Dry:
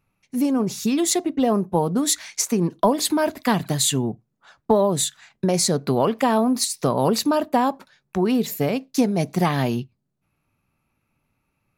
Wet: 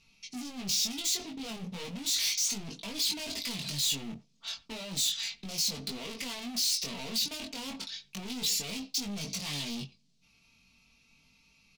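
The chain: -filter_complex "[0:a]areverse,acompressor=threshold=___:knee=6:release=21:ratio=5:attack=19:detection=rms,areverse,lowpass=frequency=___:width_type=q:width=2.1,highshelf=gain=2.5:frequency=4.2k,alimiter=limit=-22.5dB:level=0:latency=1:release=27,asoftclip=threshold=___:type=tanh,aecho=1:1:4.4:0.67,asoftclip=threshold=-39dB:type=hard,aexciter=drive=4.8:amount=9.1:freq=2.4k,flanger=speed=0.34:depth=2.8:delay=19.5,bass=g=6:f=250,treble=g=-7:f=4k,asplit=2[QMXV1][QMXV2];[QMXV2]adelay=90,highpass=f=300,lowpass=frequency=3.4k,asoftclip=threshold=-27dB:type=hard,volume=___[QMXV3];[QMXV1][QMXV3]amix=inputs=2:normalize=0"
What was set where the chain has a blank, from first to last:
-31dB, 5.3k, -34dB, -21dB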